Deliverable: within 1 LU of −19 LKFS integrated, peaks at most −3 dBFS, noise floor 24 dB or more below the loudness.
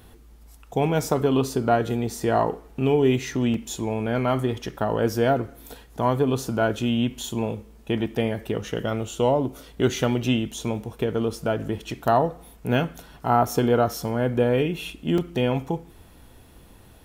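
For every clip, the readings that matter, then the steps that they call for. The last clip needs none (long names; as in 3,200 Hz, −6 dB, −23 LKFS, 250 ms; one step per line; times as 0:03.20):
number of dropouts 3; longest dropout 2.4 ms; integrated loudness −24.5 LKFS; sample peak −7.0 dBFS; target loudness −19.0 LKFS
→ repair the gap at 0:02.20/0:03.54/0:15.18, 2.4 ms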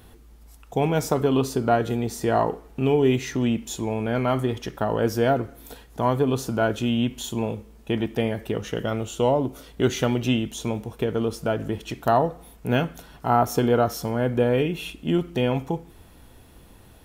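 number of dropouts 0; integrated loudness −24.5 LKFS; sample peak −7.0 dBFS; target loudness −19.0 LKFS
→ level +5.5 dB
brickwall limiter −3 dBFS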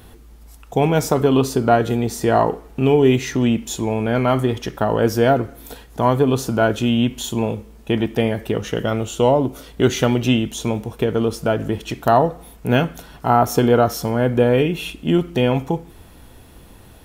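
integrated loudness −19.0 LKFS; sample peak −3.0 dBFS; background noise floor −45 dBFS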